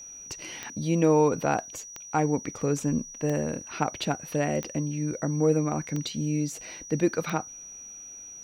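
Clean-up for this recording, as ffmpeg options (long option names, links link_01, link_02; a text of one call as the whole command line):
ffmpeg -i in.wav -af "adeclick=threshold=4,bandreject=frequency=5800:width=30" out.wav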